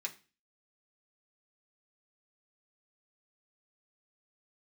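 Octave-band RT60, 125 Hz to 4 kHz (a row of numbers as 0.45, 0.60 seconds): 0.45, 0.45, 0.35, 0.30, 0.35, 0.35 seconds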